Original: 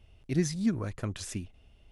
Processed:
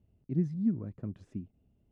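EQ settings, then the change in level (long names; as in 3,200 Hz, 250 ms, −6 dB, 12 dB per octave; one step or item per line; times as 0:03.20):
resonant band-pass 190 Hz, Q 1.3
0.0 dB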